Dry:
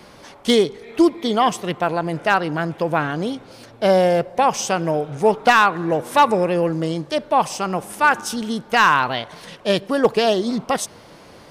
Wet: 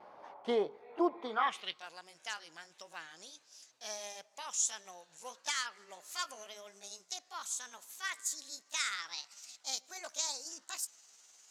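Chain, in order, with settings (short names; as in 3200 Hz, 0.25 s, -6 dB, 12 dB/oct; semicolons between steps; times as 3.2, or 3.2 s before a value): gliding pitch shift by +6 st starting unshifted; vibrato 1.5 Hz 39 cents; band-pass sweep 810 Hz -> 6700 Hz, 1.19–1.9; gain -3 dB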